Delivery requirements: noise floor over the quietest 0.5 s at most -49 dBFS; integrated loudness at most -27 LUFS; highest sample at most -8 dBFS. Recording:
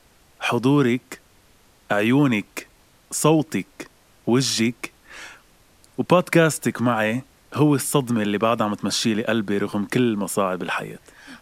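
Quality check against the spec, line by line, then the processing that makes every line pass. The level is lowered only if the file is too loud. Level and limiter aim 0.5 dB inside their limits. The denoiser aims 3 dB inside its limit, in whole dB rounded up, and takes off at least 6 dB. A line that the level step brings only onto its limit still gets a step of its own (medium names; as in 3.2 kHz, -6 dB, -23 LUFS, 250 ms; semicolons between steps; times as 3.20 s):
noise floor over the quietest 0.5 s -55 dBFS: pass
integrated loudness -21.5 LUFS: fail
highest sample -3.5 dBFS: fail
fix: trim -6 dB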